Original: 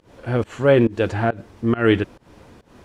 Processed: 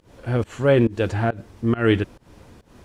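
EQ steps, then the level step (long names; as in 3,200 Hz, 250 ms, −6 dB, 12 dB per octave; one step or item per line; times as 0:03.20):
low-shelf EQ 140 Hz +6.5 dB
high-shelf EQ 5,000 Hz +6 dB
−3.0 dB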